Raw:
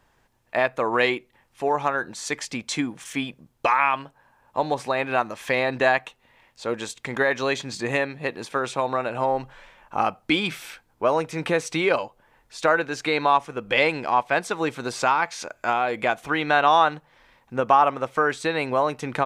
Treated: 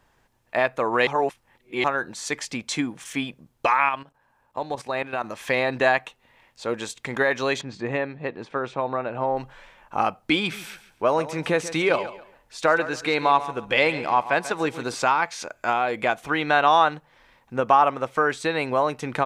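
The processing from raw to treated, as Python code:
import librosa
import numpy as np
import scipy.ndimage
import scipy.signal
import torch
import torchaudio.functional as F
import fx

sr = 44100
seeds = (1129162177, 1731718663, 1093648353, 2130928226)

y = fx.level_steps(x, sr, step_db=13, at=(3.89, 5.24))
y = fx.spacing_loss(y, sr, db_at_10k=24, at=(7.61, 9.37))
y = fx.echo_feedback(y, sr, ms=139, feedback_pct=26, wet_db=-14, at=(10.39, 14.95))
y = fx.edit(y, sr, fx.reverse_span(start_s=1.07, length_s=0.77), tone=tone)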